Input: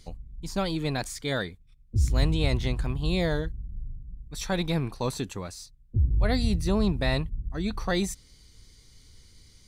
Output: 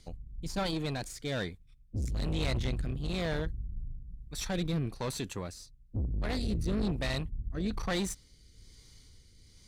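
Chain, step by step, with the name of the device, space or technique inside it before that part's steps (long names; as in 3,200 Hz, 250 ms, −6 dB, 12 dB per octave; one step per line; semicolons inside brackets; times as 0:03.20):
overdriven rotary cabinet (tube saturation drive 28 dB, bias 0.5; rotating-speaker cabinet horn 1.1 Hz)
level +1.5 dB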